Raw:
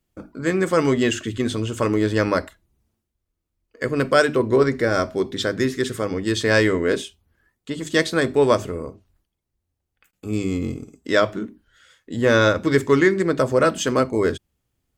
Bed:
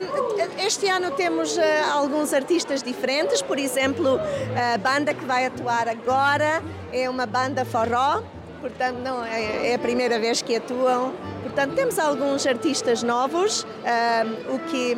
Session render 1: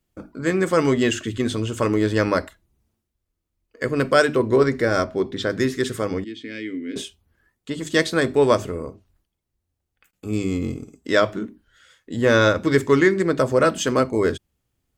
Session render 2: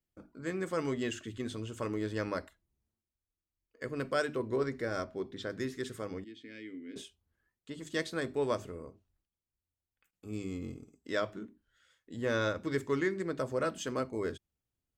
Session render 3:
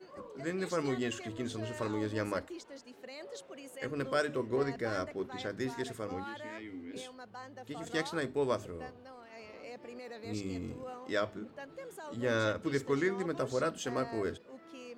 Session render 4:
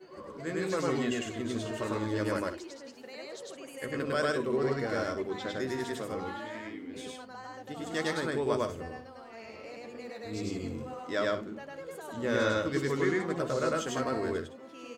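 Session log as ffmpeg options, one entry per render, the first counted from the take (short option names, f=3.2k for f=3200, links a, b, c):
-filter_complex "[0:a]asettb=1/sr,asplit=3[a][b][c];[a]atrim=end=5.044[d];[b]atrim=start=5.04:end=5.5,asetpts=PTS-STARTPTS,afade=t=in:d=0.004:c=qsin,afade=t=out:st=0.456:d=0.004:c=qsin,lowpass=f=3k:p=1[e];[c]atrim=start=5.496[f];[d][e]acrossfade=d=0.004:c1=hsin:c2=qsin[g];[g][f]acrossfade=d=0.004:c1=qsin:c2=hsin,asettb=1/sr,asplit=3[h][i][j];[h]atrim=end=6.244[k];[i]atrim=start=6.24:end=6.96,asetpts=PTS-STARTPTS,afade=t=in:d=0.004:c=qsin,afade=t=out:st=0.716:d=0.004:c=qsin,asplit=3[l][m][n];[l]bandpass=f=270:t=q:w=8,volume=0dB[o];[m]bandpass=f=2.29k:t=q:w=8,volume=-6dB[p];[n]bandpass=f=3.01k:t=q:w=8,volume=-9dB[q];[o][p][q]amix=inputs=3:normalize=0[r];[j]atrim=start=6.956[s];[k][r]acrossfade=d=0.004:c1=hsin:c2=qsin[t];[t][s]acrossfade=d=0.004:c1=qsin:c2=hsin"
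-af "volume=-15dB"
-filter_complex "[1:a]volume=-24.5dB[a];[0:a][a]amix=inputs=2:normalize=0"
-filter_complex "[0:a]asplit=2[a][b];[b]adelay=13,volume=-12dB[c];[a][c]amix=inputs=2:normalize=0,aecho=1:1:102|160.3:1|0.316"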